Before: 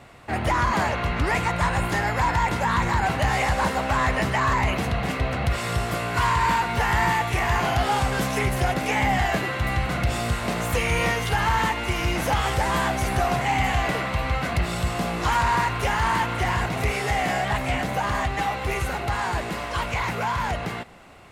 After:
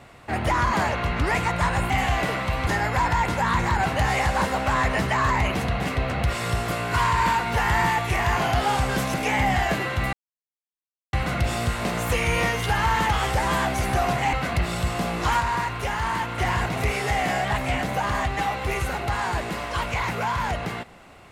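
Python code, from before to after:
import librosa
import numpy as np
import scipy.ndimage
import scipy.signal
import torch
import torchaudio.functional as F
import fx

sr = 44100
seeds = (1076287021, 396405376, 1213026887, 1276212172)

y = fx.edit(x, sr, fx.cut(start_s=8.37, length_s=0.4),
    fx.insert_silence(at_s=9.76, length_s=1.0),
    fx.cut(start_s=11.72, length_s=0.6),
    fx.move(start_s=13.56, length_s=0.77, to_s=1.9),
    fx.clip_gain(start_s=15.4, length_s=0.98, db=-3.5), tone=tone)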